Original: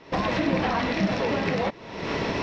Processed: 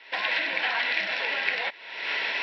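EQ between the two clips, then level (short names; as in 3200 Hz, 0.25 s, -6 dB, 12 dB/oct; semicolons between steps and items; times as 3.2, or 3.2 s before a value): resonant high-pass 1300 Hz, resonance Q 3.2; fixed phaser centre 2900 Hz, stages 4; +5.0 dB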